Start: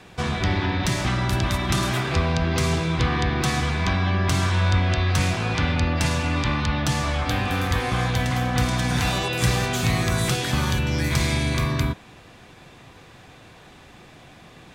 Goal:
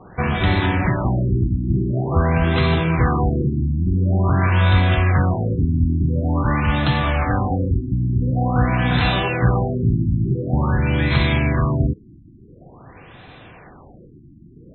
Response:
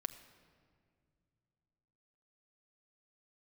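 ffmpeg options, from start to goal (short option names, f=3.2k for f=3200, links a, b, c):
-af "afftfilt=real='re*lt(b*sr/1024,340*pow(4200/340,0.5+0.5*sin(2*PI*0.47*pts/sr)))':imag='im*lt(b*sr/1024,340*pow(4200/340,0.5+0.5*sin(2*PI*0.47*pts/sr)))':win_size=1024:overlap=0.75,volume=5dB"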